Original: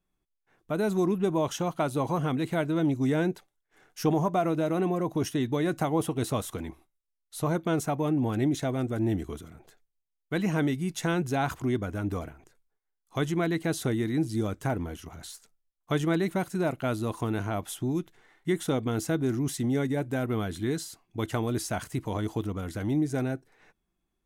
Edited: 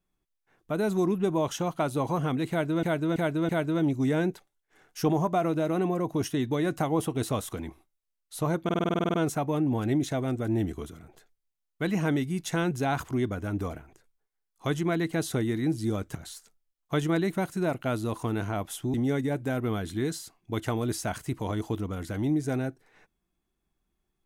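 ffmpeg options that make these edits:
-filter_complex "[0:a]asplit=16[a][b][c][d][e][f][g][h][i][j][k][l][m][n][o][p];[a]atrim=end=2.832[q];[b]atrim=start=2.498:end=2.832[r];[c]atrim=start=2.498:end=2.832[s];[d]atrim=start=2.498:end=7.702[t];[e]atrim=start=7.648:end=7.702[u];[f]atrim=start=7.648:end=7.702[v];[g]atrim=start=7.648:end=7.702[w];[h]atrim=start=7.648:end=7.702[x];[i]atrim=start=7.648:end=7.702[y];[j]atrim=start=7.648:end=7.702[z];[k]atrim=start=7.648:end=7.702[aa];[l]atrim=start=7.648:end=7.702[ab];[m]atrim=start=7.648:end=7.702[ac];[n]atrim=start=7.648:end=14.662[ad];[o]atrim=start=15.128:end=17.922[ae];[p]atrim=start=19.598[af];[q][r]acrossfade=d=0.004:c1=hsin:c2=hsin[ag];[ag][s]acrossfade=d=0.004:c1=hsin:c2=hsin[ah];[ah][t]acrossfade=d=0.004:c1=hsin:c2=hsin[ai];[ai][u]acrossfade=d=0.004:c1=hsin:c2=hsin[aj];[aj][v]acrossfade=d=0.004:c1=hsin:c2=hsin[ak];[ak][w]acrossfade=d=0.004:c1=hsin:c2=hsin[al];[al][x]acrossfade=d=0.004:c1=hsin:c2=hsin[am];[am][y]acrossfade=d=0.004:c1=hsin:c2=hsin[an];[an][z]acrossfade=d=0.004:c1=hsin:c2=hsin[ao];[ao][aa]acrossfade=d=0.004:c1=hsin:c2=hsin[ap];[ap][ab]acrossfade=d=0.004:c1=hsin:c2=hsin[aq];[aq][ac]acrossfade=d=0.004:c1=hsin:c2=hsin[ar];[ar][ad]acrossfade=d=0.004:c1=hsin:c2=hsin[as];[as][ae]acrossfade=d=0.004:c1=hsin:c2=hsin[at];[at][af]acrossfade=d=0.004:c1=hsin:c2=hsin"

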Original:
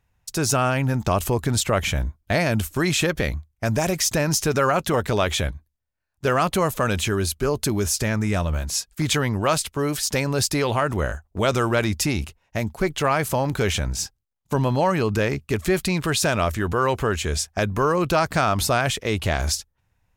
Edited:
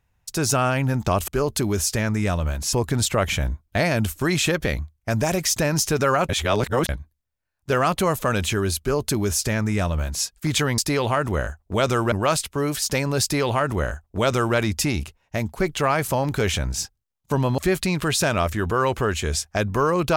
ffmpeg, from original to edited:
-filter_complex "[0:a]asplit=8[a][b][c][d][e][f][g][h];[a]atrim=end=1.282[i];[b]atrim=start=7.348:end=8.802[j];[c]atrim=start=1.278:end=4.842[k];[d]atrim=start=4.838:end=5.442,asetpts=PTS-STARTPTS,areverse[l];[e]atrim=start=5.438:end=9.332[m];[f]atrim=start=10.428:end=11.772[n];[g]atrim=start=9.328:end=14.792[o];[h]atrim=start=15.598[p];[i][j]acrossfade=d=0.004:c1=hsin:c2=hsin[q];[q][k]acrossfade=d=0.004:c1=hsin:c2=hsin[r];[r][l]acrossfade=d=0.004:c1=hsin:c2=hsin[s];[s][m]acrossfade=d=0.004:c1=hsin:c2=hsin[t];[t][n]acrossfade=d=0.004:c1=hsin:c2=hsin[u];[u][o]acrossfade=d=0.004:c1=hsin:c2=hsin[v];[v][p]acrossfade=d=0.004:c1=hsin:c2=hsin"

